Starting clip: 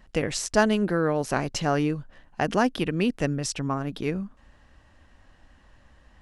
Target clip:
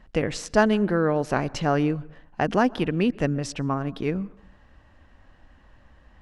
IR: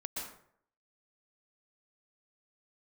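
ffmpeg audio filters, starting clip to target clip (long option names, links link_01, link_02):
-filter_complex "[0:a]lowpass=frequency=2900:poles=1,asplit=2[link_01][link_02];[1:a]atrim=start_sample=2205,highshelf=frequency=4000:gain=-10.5[link_03];[link_02][link_03]afir=irnorm=-1:irlink=0,volume=-21dB[link_04];[link_01][link_04]amix=inputs=2:normalize=0,volume=1.5dB"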